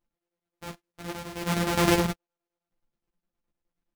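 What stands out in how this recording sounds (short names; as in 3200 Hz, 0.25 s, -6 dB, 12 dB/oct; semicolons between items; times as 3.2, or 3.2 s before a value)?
a buzz of ramps at a fixed pitch in blocks of 256 samples; chopped level 9.6 Hz, depth 60%, duty 70%; a shimmering, thickened sound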